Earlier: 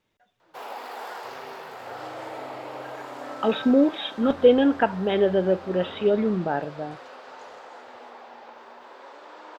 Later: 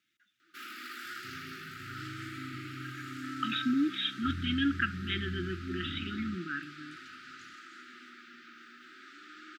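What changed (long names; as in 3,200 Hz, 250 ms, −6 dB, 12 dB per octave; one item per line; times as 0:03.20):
speech: add high-pass filter 720 Hz 6 dB per octave
second sound: add spectral tilt −3 dB per octave
master: add linear-phase brick-wall band-stop 370–1,200 Hz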